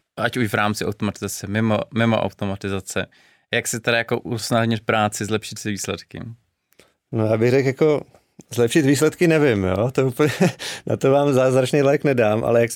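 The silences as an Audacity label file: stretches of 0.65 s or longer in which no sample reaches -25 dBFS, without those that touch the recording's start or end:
6.240000	7.130000	silence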